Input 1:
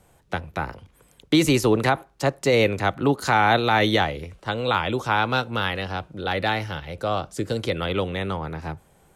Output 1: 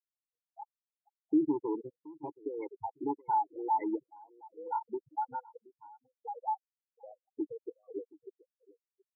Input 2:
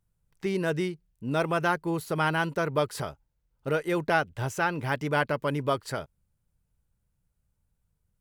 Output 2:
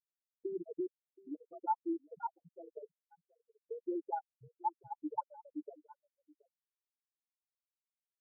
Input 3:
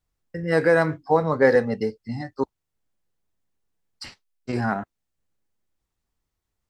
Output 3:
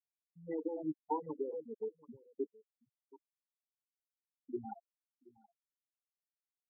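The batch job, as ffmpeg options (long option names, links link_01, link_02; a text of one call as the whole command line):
ffmpeg -i in.wav -filter_complex "[0:a]afftfilt=real='re*gte(hypot(re,im),0.316)':imag='im*gte(hypot(re,im),0.316)':win_size=1024:overlap=0.75,asoftclip=type=tanh:threshold=-17dB,agate=range=-33dB:threshold=-49dB:ratio=3:detection=peak,equalizer=frequency=680:width_type=o:width=2.8:gain=10.5,aecho=1:1:2:0.72,acompressor=threshold=-14dB:ratio=2.5,asplit=3[link_01][link_02][link_03];[link_01]bandpass=frequency=300:width_type=q:width=8,volume=0dB[link_04];[link_02]bandpass=frequency=870:width_type=q:width=8,volume=-6dB[link_05];[link_03]bandpass=frequency=2240:width_type=q:width=8,volume=-9dB[link_06];[link_04][link_05][link_06]amix=inputs=3:normalize=0,afftfilt=real='re*gte(hypot(re,im),0.0316)':imag='im*gte(hypot(re,im),0.0316)':win_size=1024:overlap=0.75,aecho=1:1:725:0.075,afftfilt=real='re*lt(b*sr/1024,490*pow(4700/490,0.5+0.5*sin(2*PI*1.9*pts/sr)))':imag='im*lt(b*sr/1024,490*pow(4700/490,0.5+0.5*sin(2*PI*1.9*pts/sr)))':win_size=1024:overlap=0.75,volume=-3dB" out.wav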